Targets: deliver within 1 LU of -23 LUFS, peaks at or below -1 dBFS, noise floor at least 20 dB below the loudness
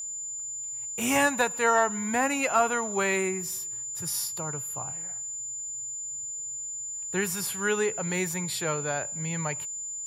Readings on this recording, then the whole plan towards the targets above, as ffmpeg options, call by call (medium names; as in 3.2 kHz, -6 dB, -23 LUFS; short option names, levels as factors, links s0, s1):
steady tone 7.1 kHz; tone level -33 dBFS; loudness -28.0 LUFS; peak level -11.0 dBFS; loudness target -23.0 LUFS
-> -af "bandreject=f=7100:w=30"
-af "volume=1.78"